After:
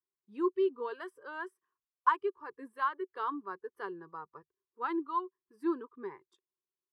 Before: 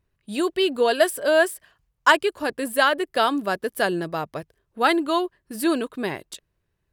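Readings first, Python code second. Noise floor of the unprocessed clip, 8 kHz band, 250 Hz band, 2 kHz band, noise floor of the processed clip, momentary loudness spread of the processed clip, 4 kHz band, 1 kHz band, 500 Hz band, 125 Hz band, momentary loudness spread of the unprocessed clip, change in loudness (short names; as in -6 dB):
-75 dBFS, under -35 dB, -12.5 dB, -19.0 dB, under -85 dBFS, 16 LU, -29.0 dB, -10.0 dB, -14.5 dB, under -25 dB, 13 LU, -13.0 dB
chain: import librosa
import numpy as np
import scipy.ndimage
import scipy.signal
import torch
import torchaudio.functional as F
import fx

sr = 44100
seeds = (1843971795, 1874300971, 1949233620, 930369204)

y = fx.noise_reduce_blind(x, sr, reduce_db=12)
y = fx.wow_flutter(y, sr, seeds[0], rate_hz=2.1, depth_cents=27.0)
y = fx.double_bandpass(y, sr, hz=630.0, octaves=1.5)
y = F.gain(torch.from_numpy(y), -4.0).numpy()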